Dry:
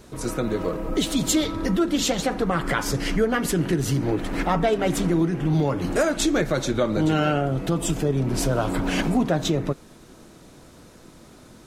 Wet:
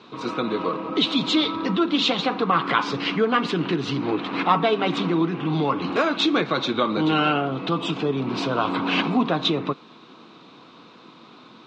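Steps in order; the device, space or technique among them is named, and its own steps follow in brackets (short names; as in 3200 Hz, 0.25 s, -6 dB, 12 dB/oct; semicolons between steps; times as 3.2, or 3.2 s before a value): HPF 100 Hz; kitchen radio (speaker cabinet 220–4100 Hz, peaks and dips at 370 Hz -3 dB, 590 Hz -8 dB, 1100 Hz +9 dB, 1800 Hz -6 dB, 2600 Hz +5 dB, 3800 Hz +7 dB); gain +3 dB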